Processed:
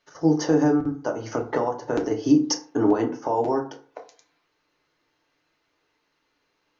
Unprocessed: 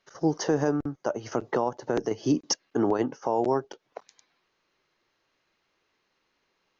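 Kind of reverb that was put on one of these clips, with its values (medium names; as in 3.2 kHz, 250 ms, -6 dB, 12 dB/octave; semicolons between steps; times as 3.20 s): FDN reverb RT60 0.43 s, low-frequency decay 1×, high-frequency decay 0.55×, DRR 1.5 dB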